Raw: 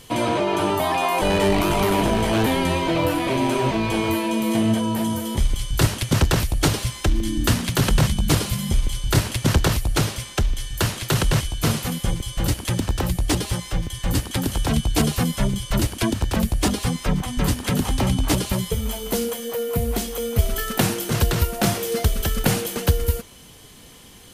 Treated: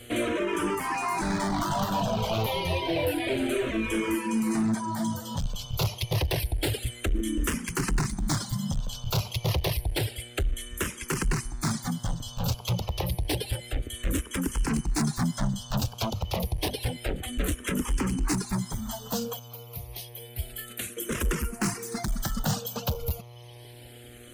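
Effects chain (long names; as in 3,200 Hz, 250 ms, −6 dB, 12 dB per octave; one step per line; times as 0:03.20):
reverb reduction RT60 1.1 s
0:19.39–0:20.97: guitar amp tone stack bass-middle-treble 5-5-5
hum with harmonics 120 Hz, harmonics 22, −45 dBFS −6 dB per octave
gain into a clipping stage and back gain 20.5 dB
frequency shifter mixed with the dry sound −0.29 Hz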